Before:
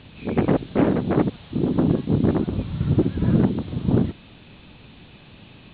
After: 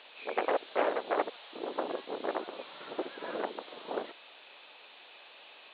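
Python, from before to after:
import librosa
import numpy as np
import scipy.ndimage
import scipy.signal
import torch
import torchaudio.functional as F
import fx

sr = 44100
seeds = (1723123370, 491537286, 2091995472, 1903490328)

y = scipy.signal.sosfilt(scipy.signal.butter(4, 530.0, 'highpass', fs=sr, output='sos'), x)
y = y * 10.0 ** (-1.5 / 20.0)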